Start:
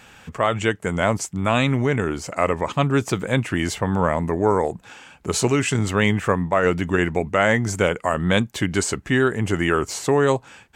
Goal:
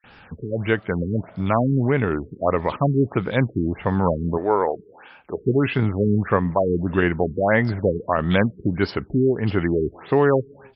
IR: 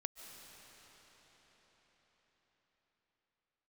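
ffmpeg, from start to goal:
-filter_complex "[0:a]asettb=1/sr,asplit=3[s0][s1][s2];[s0]atrim=end=4.334[s3];[s1]atrim=start=4.33:end=5.37,asetpts=PTS-STARTPTS,afade=t=in:d=0.004:c=qsin,afade=t=out:st=1.036:d=0.004:c=qsin,bass=f=250:g=-14,treble=f=4000:g=-3[s4];[s2]atrim=start=5.366[s5];[s3][s4]acrossfade=d=0.004:c1=hsin:c2=qsin[s6];[s6][s5]acrossfade=d=0.004:c1=qsin:c2=hsin,acrossover=split=3000[s7][s8];[s7]adelay=40[s9];[s9][s8]amix=inputs=2:normalize=0,asplit=2[s10][s11];[1:a]atrim=start_sample=2205,afade=t=out:st=0.39:d=0.01,atrim=end_sample=17640[s12];[s11][s12]afir=irnorm=-1:irlink=0,volume=0.168[s13];[s10][s13]amix=inputs=2:normalize=0,afftfilt=real='re*lt(b*sr/1024,440*pow(5600/440,0.5+0.5*sin(2*PI*1.6*pts/sr)))':imag='im*lt(b*sr/1024,440*pow(5600/440,0.5+0.5*sin(2*PI*1.6*pts/sr)))':win_size=1024:overlap=0.75"

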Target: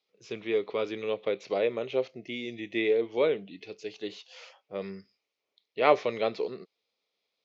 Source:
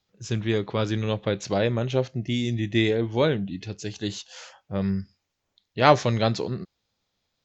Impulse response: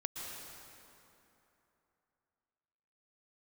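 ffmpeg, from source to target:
-filter_complex "[0:a]highpass=400,equalizer=f=440:t=q:w=4:g=7,equalizer=f=870:t=q:w=4:g=-5,equalizer=f=1600:t=q:w=4:g=-10,equalizer=f=2300:t=q:w=4:g=6,lowpass=f=5500:w=0.5412,lowpass=f=5500:w=1.3066,acrossover=split=3100[s0][s1];[s1]acompressor=threshold=0.00447:ratio=4:attack=1:release=60[s2];[s0][s2]amix=inputs=2:normalize=0,volume=0.668"

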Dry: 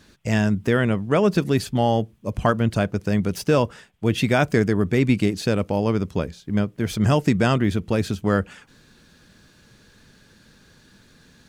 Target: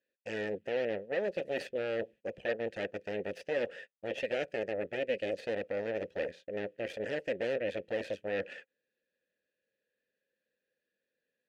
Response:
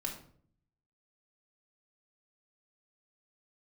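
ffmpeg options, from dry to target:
-filter_complex "[0:a]agate=range=0.0447:threshold=0.00794:ratio=16:detection=peak,equalizer=f=120:w=2.3:g=-5.5,areverse,acompressor=threshold=0.0447:ratio=6,areverse,aeval=exprs='0.158*(cos(1*acos(clip(val(0)/0.158,-1,1)))-cos(1*PI/2))+0.0631*(cos(6*acos(clip(val(0)/0.158,-1,1)))-cos(6*PI/2))':c=same,asplit=3[s0][s1][s2];[s0]bandpass=f=530:t=q:w=8,volume=1[s3];[s1]bandpass=f=1840:t=q:w=8,volume=0.501[s4];[s2]bandpass=f=2480:t=q:w=8,volume=0.355[s5];[s3][s4][s5]amix=inputs=3:normalize=0,asplit=2[s6][s7];[s7]alimiter=level_in=6.68:limit=0.0631:level=0:latency=1:release=129,volume=0.15,volume=0.75[s8];[s6][s8]amix=inputs=2:normalize=0,volume=1.5"

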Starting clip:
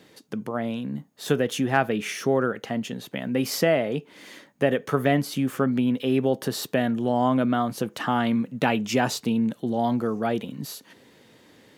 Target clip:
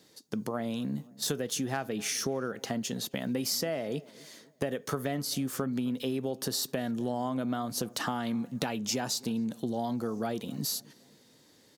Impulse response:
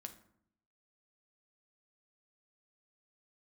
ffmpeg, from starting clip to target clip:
-filter_complex "[0:a]agate=range=0.355:threshold=0.01:ratio=16:detection=peak,highshelf=f=3600:t=q:w=1.5:g=8,acompressor=threshold=0.0355:ratio=6,asplit=2[s0][s1];[s1]adelay=262,lowpass=f=1300:p=1,volume=0.0841,asplit=2[s2][s3];[s3]adelay=262,lowpass=f=1300:p=1,volume=0.47,asplit=2[s4][s5];[s5]adelay=262,lowpass=f=1300:p=1,volume=0.47[s6];[s2][s4][s6]amix=inputs=3:normalize=0[s7];[s0][s7]amix=inputs=2:normalize=0"

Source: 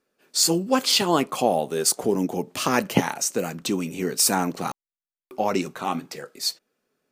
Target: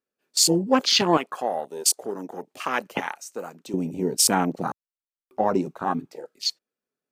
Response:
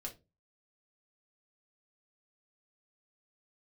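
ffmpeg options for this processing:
-filter_complex "[0:a]afwtdn=0.0398,asettb=1/sr,asplit=3[s0][s1][s2];[s0]atrim=end=1.174[s3];[s1]atrim=start=1.17:end=3.74,asetpts=PTS-STARTPTS,afade=t=in:d=0.004:c=qsin,afade=t=out:st=2.566:d=0.004:c=qsin,highpass=f=1200:p=1[s4];[s2]atrim=start=3.736[s5];[s3][s4]acrossfade=d=0.004:c1=hsin:c2=qsin[s6];[s6][s5]acrossfade=d=0.004:c1=qsin:c2=hsin,volume=1.19"

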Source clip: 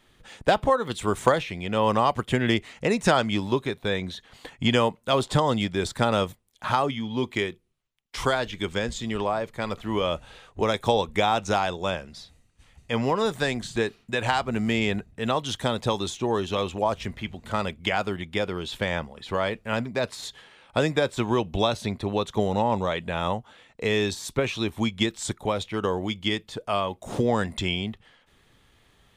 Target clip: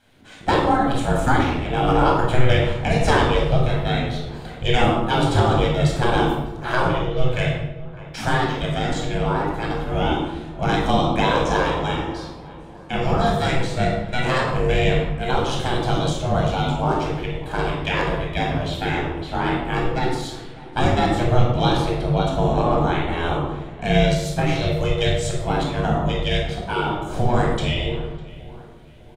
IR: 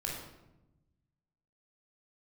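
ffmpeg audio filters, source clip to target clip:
-filter_complex "[0:a]aeval=exprs='val(0)*sin(2*PI*250*n/s)':c=same,asplit=2[s0][s1];[s1]adelay=602,lowpass=f=2000:p=1,volume=0.126,asplit=2[s2][s3];[s3]adelay=602,lowpass=f=2000:p=1,volume=0.51,asplit=2[s4][s5];[s5]adelay=602,lowpass=f=2000:p=1,volume=0.51,asplit=2[s6][s7];[s7]adelay=602,lowpass=f=2000:p=1,volume=0.51[s8];[s0][s2][s4][s6][s8]amix=inputs=5:normalize=0[s9];[1:a]atrim=start_sample=2205[s10];[s9][s10]afir=irnorm=-1:irlink=0,volume=1.58"

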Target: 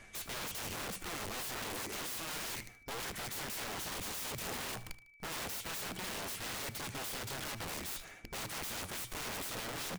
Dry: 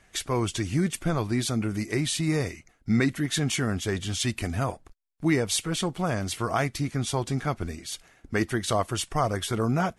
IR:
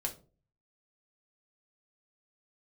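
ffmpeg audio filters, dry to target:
-filter_complex "[0:a]bandreject=f=60:t=h:w=6,bandreject=f=120:t=h:w=6,bandreject=f=180:t=h:w=6,alimiter=limit=0.112:level=0:latency=1:release=111,areverse,acompressor=threshold=0.0178:ratio=12,areverse,aeval=exprs='val(0)+0.000631*sin(2*PI*2300*n/s)':c=same,flanger=delay=8.5:depth=2.9:regen=66:speed=1.2:shape=triangular,aeval=exprs='(mod(178*val(0)+1,2)-1)/178':c=same,asplit=2[s0][s1];[s1]aecho=0:1:76|152|228:0.158|0.0555|0.0194[s2];[s0][s2]amix=inputs=2:normalize=0,volume=2.82"

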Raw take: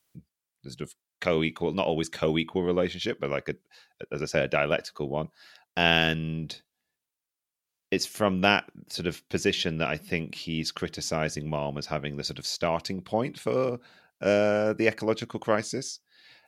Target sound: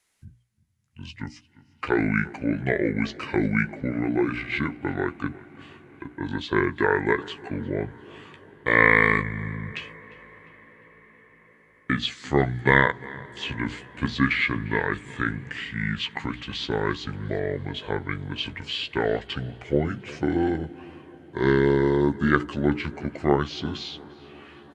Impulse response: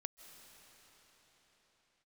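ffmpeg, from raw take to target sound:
-filter_complex "[0:a]acrossover=split=7900[s0][s1];[s1]acompressor=threshold=0.00178:ratio=4:attack=1:release=60[s2];[s0][s2]amix=inputs=2:normalize=0,asetrate=29371,aresample=44100,equalizer=f=2000:t=o:w=0.53:g=6,bandreject=f=60:t=h:w=6,bandreject=f=120:t=h:w=6,bandreject=f=180:t=h:w=6,bandreject=f=240:t=h:w=6,bandreject=f=300:t=h:w=6,asplit=2[s3][s4];[s4]adelay=14,volume=0.355[s5];[s3][s5]amix=inputs=2:normalize=0,asplit=2[s6][s7];[s7]adelay=351,lowpass=f=4700:p=1,volume=0.0891,asplit=2[s8][s9];[s9]adelay=351,lowpass=f=4700:p=1,volume=0.49,asplit=2[s10][s11];[s11]adelay=351,lowpass=f=4700:p=1,volume=0.49,asplit=2[s12][s13];[s13]adelay=351,lowpass=f=4700:p=1,volume=0.49[s14];[s6][s8][s10][s12][s14]amix=inputs=5:normalize=0,asplit=2[s15][s16];[1:a]atrim=start_sample=2205,asetrate=26019,aresample=44100,highshelf=f=4300:g=-11[s17];[s16][s17]afir=irnorm=-1:irlink=0,volume=0.237[s18];[s15][s18]amix=inputs=2:normalize=0"

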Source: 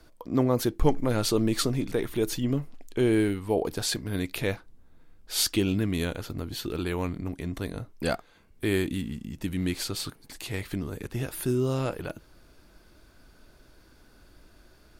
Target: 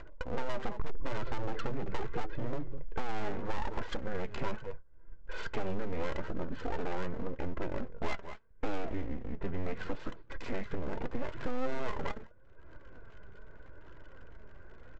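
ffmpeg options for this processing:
-filter_complex "[0:a]asplit=2[s0][s1];[s1]adelay=204.1,volume=0.112,highshelf=f=4000:g=-4.59[s2];[s0][s2]amix=inputs=2:normalize=0,agate=range=0.112:threshold=0.00501:ratio=16:detection=peak,lowpass=f=1700:w=0.5412,lowpass=f=1700:w=1.3066,equalizer=f=790:t=o:w=0.45:g=-5.5,aecho=1:1:2:0.97,aresample=16000,aeval=exprs='abs(val(0))':c=same,aresample=44100,acompressor=mode=upward:threshold=0.0224:ratio=2.5,flanger=delay=2.9:depth=2.3:regen=64:speed=0.79:shape=triangular,asoftclip=type=tanh:threshold=0.0708,acompressor=threshold=0.0224:ratio=2.5,volume=2"

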